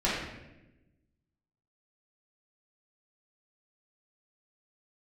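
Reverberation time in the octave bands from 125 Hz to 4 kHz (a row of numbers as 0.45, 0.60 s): 1.5, 1.5, 1.2, 0.80, 0.95, 0.75 s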